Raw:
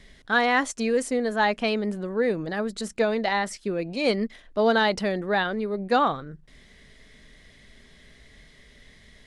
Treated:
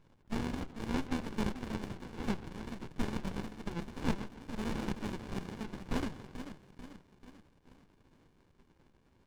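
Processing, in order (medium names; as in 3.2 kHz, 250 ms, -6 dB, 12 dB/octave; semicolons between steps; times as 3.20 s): level-controlled noise filter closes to 1.3 kHz, open at -21 dBFS; spectral gate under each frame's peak -30 dB weak; in parallel at -6 dB: hysteresis with a dead band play -41 dBFS; on the sum: mistuned SSB -170 Hz 150–3500 Hz; on a send: two-band feedback delay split 1.2 kHz, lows 143 ms, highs 440 ms, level -9 dB; on the sum: sliding maximum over 65 samples; trim +12 dB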